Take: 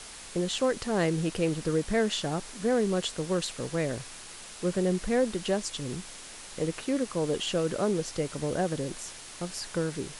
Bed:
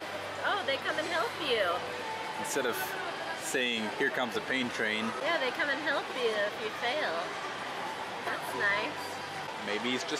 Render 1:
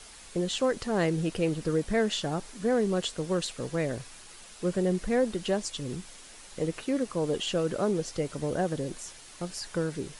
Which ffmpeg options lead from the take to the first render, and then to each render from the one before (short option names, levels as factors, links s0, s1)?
-af "afftdn=nr=6:nf=-45"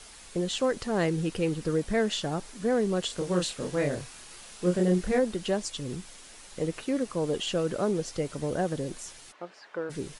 -filter_complex "[0:a]asettb=1/sr,asplit=3[s0][s1][s2];[s0]atrim=end=1.084[s3];[s1]atrim=start=1.08:end=1.64,asetpts=PTS-STARTPTS,afade=t=in:d=0.004:c=qsin,afade=t=out:st=0.556:d=0.004:c=qsin,bandreject=f=640:w=5.4[s4];[s2]atrim=start=1.636[s5];[s3][s4]acrossfade=d=0.004:c1=hsin:c2=qsin[s6];[s6][s5]acrossfade=d=0.004:c1=qsin:c2=hsin,asplit=3[s7][s8][s9];[s7]afade=t=out:st=3.09:d=0.02[s10];[s8]asplit=2[s11][s12];[s12]adelay=28,volume=0.75[s13];[s11][s13]amix=inputs=2:normalize=0,afade=t=in:st=3.09:d=0.02,afade=t=out:st=5.18:d=0.02[s14];[s9]afade=t=in:st=5.18:d=0.02[s15];[s10][s14][s15]amix=inputs=3:normalize=0,asplit=3[s16][s17][s18];[s16]afade=t=out:st=9.31:d=0.02[s19];[s17]highpass=430,lowpass=2000,afade=t=in:st=9.31:d=0.02,afade=t=out:st=9.89:d=0.02[s20];[s18]afade=t=in:st=9.89:d=0.02[s21];[s19][s20][s21]amix=inputs=3:normalize=0"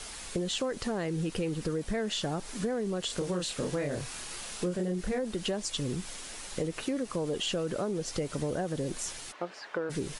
-filter_complex "[0:a]asplit=2[s0][s1];[s1]alimiter=level_in=1.12:limit=0.0631:level=0:latency=1:release=19,volume=0.891,volume=1.06[s2];[s0][s2]amix=inputs=2:normalize=0,acompressor=threshold=0.0355:ratio=6"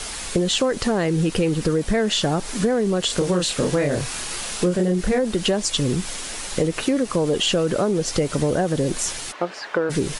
-af "volume=3.76"